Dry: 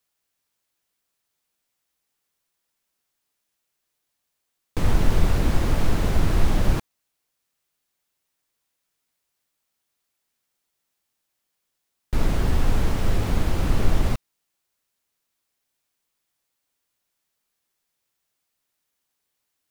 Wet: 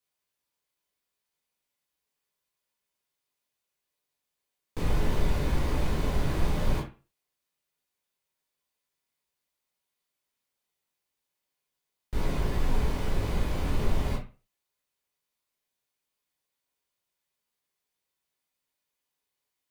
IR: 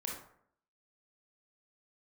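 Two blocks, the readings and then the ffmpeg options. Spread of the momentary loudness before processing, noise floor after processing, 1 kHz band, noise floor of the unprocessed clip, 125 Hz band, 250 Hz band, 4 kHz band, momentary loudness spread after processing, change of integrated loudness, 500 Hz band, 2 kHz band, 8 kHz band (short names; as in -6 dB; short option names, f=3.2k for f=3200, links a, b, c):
5 LU, -85 dBFS, -5.0 dB, -79 dBFS, -6.5 dB, -6.0 dB, -5.5 dB, 6 LU, -6.0 dB, -4.0 dB, -5.5 dB, -7.0 dB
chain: -filter_complex "[1:a]atrim=start_sample=2205,asetrate=88200,aresample=44100[a];[0:a][a]afir=irnorm=-1:irlink=0"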